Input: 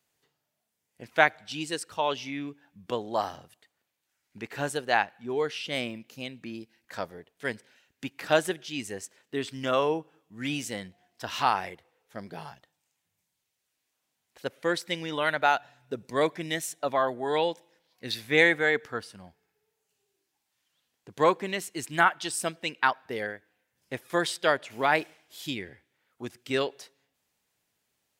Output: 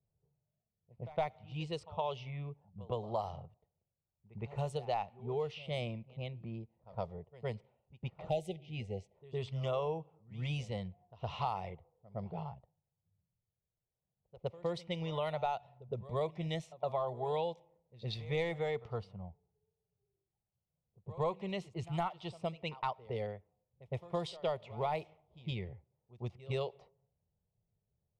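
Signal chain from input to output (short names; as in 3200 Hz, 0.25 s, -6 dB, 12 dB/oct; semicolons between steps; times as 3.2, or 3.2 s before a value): in parallel at -7 dB: hard clip -15 dBFS, distortion -15 dB; on the sum: tone controls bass +12 dB, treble -11 dB; fixed phaser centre 670 Hz, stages 4; spectral delete 8.29–9.14, 870–1900 Hz; compressor 3:1, threshold -29 dBFS, peak gain reduction 11 dB; low-pass opened by the level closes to 420 Hz, open at -27 dBFS; on a send: reverse echo 0.113 s -18.5 dB; on the sum: gain -4.5 dB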